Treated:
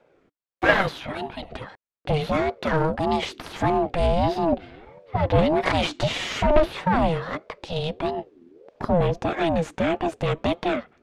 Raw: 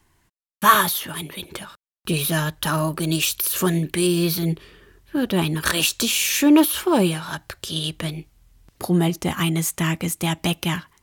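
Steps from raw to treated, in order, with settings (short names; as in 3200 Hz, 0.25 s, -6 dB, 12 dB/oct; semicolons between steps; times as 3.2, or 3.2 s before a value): 4.52–6.6 comb 5.4 ms, depth 88%; one-sided clip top -24 dBFS; tape spacing loss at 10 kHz 31 dB; ring modulator with a swept carrier 420 Hz, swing 30%, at 1.6 Hz; gain +6.5 dB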